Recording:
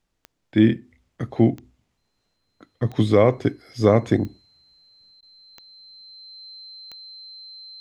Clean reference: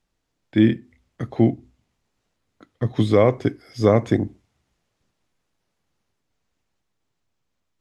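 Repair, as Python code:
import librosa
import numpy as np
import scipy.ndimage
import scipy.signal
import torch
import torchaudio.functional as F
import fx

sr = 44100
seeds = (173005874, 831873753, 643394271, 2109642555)

y = fx.fix_declick_ar(x, sr, threshold=10.0)
y = fx.notch(y, sr, hz=4100.0, q=30.0)
y = fx.fix_interpolate(y, sr, at_s=(5.21,), length_ms=15.0)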